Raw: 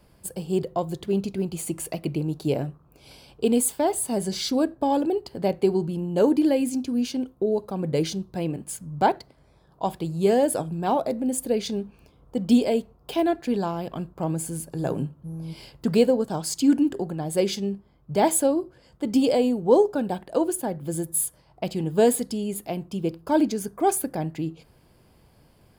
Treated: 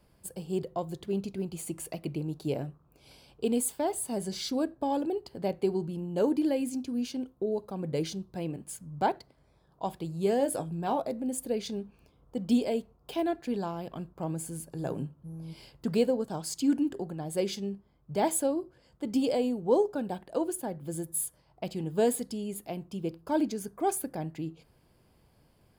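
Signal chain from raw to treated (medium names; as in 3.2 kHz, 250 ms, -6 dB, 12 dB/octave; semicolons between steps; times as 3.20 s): 10.38–11.02 s: doubling 18 ms -9 dB; trim -7 dB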